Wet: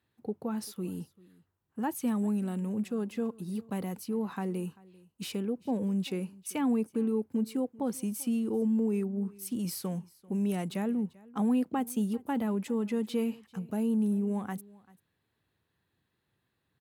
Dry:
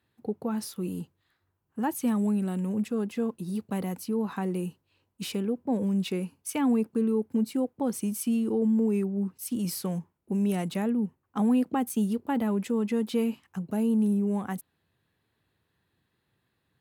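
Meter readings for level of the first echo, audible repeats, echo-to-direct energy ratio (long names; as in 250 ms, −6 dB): −23.0 dB, 1, −23.0 dB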